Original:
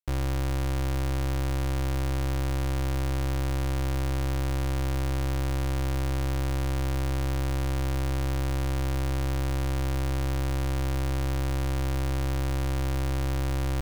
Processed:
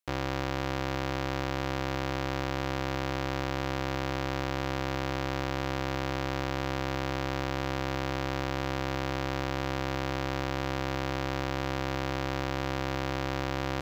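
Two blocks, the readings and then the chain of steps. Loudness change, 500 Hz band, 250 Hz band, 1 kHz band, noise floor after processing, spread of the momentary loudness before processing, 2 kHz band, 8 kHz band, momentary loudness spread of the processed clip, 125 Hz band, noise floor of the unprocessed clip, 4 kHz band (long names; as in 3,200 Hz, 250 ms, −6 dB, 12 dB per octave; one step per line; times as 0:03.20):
−3.0 dB, +2.5 dB, −0.5 dB, +4.0 dB, −33 dBFS, 0 LU, +4.0 dB, −5.5 dB, 0 LU, −7.5 dB, −27 dBFS, +2.5 dB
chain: high-pass filter 410 Hz 6 dB per octave
slew-rate limiting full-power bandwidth 110 Hz
level +6 dB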